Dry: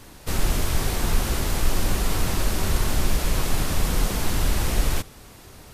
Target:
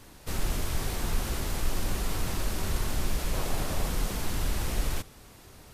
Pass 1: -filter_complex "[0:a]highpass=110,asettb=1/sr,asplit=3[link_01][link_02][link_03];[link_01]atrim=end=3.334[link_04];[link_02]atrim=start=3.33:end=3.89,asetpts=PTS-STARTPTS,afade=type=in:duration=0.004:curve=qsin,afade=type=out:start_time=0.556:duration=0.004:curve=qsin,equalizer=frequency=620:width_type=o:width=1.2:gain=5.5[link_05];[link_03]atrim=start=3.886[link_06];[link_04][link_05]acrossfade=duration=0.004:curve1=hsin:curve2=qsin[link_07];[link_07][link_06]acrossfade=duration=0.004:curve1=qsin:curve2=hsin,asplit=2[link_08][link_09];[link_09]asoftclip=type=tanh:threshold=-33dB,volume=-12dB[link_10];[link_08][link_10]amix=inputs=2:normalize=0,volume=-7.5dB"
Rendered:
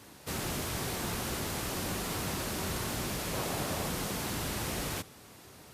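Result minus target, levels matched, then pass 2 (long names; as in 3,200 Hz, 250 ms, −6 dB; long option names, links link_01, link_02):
125 Hz band −3.0 dB
-filter_complex "[0:a]asettb=1/sr,asplit=3[link_01][link_02][link_03];[link_01]atrim=end=3.334[link_04];[link_02]atrim=start=3.33:end=3.89,asetpts=PTS-STARTPTS,afade=type=in:duration=0.004:curve=qsin,afade=type=out:start_time=0.556:duration=0.004:curve=qsin,equalizer=frequency=620:width_type=o:width=1.2:gain=5.5[link_05];[link_03]atrim=start=3.886[link_06];[link_04][link_05]acrossfade=duration=0.004:curve1=hsin:curve2=qsin[link_07];[link_07][link_06]acrossfade=duration=0.004:curve1=qsin:curve2=hsin,asplit=2[link_08][link_09];[link_09]asoftclip=type=tanh:threshold=-33dB,volume=-12dB[link_10];[link_08][link_10]amix=inputs=2:normalize=0,volume=-7.5dB"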